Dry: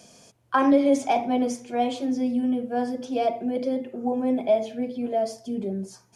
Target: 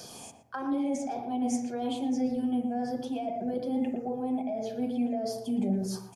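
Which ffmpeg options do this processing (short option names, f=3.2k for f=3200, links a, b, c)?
-filter_complex "[0:a]afftfilt=real='re*pow(10,9/40*sin(2*PI*(0.59*log(max(b,1)*sr/1024/100)/log(2)-(-1.7)*(pts-256)/sr)))':imag='im*pow(10,9/40*sin(2*PI*(0.59*log(max(b,1)*sr/1024/100)/log(2)-(-1.7)*(pts-256)/sr)))':win_size=1024:overlap=0.75,equalizer=f=790:t=o:w=0.26:g=11,areverse,acompressor=threshold=-30dB:ratio=6,areverse,highshelf=f=7.9k:g=8.5,acrossover=split=330[a][b];[b]acompressor=threshold=-41dB:ratio=3[c];[a][c]amix=inputs=2:normalize=0,asplit=2[d][e];[e]adelay=116,lowpass=f=1.2k:p=1,volume=-5dB,asplit=2[f][g];[g]adelay=116,lowpass=f=1.2k:p=1,volume=0.26,asplit=2[h][i];[i]adelay=116,lowpass=f=1.2k:p=1,volume=0.26[j];[d][f][h][j]amix=inputs=4:normalize=0,volume=4dB"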